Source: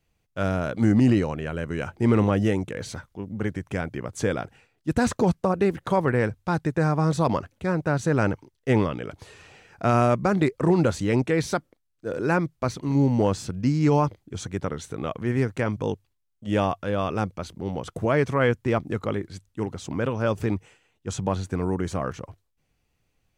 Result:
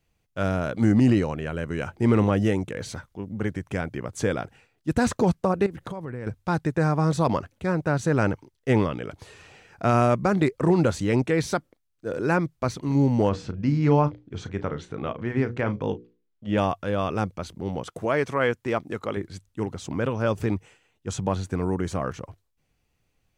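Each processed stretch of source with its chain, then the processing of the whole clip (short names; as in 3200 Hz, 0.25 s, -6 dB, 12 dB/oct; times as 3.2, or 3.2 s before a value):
5.66–6.27 low shelf 380 Hz +6 dB + compressor 5:1, threshold -32 dBFS + mismatched tape noise reduction encoder only
13.29–16.58 LPF 3700 Hz + notches 60/120/180/240/300/360/420/480/540 Hz + doubler 34 ms -12.5 dB
17.83–19.17 de-esser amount 60% + low shelf 190 Hz -11.5 dB
whole clip: dry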